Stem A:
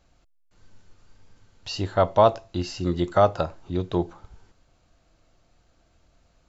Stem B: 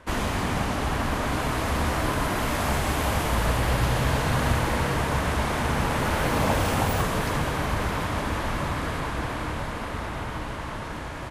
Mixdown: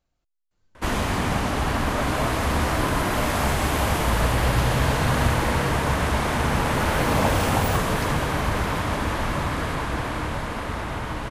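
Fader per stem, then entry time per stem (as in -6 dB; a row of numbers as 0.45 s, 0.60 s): -15.0 dB, +2.5 dB; 0.00 s, 0.75 s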